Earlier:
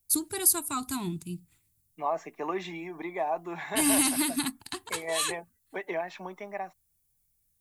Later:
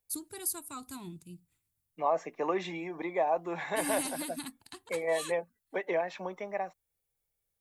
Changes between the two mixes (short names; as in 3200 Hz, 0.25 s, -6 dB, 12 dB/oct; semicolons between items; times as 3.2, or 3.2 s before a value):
first voice -11.0 dB; master: add bell 520 Hz +12 dB 0.23 oct